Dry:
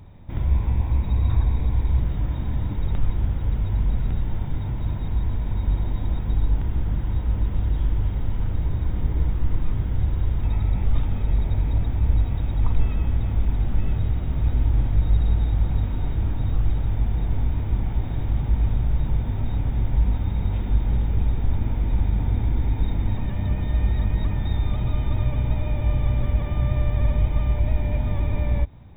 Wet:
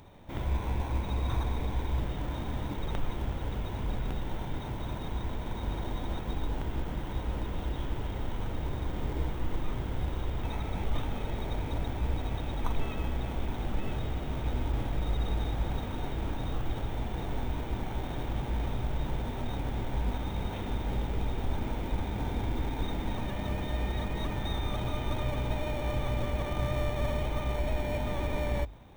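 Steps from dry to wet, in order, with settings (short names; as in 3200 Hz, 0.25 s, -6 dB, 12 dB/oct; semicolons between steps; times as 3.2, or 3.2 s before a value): tone controls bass -13 dB, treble +6 dB; notches 50/100 Hz; in parallel at -7.5 dB: sample-and-hold 18×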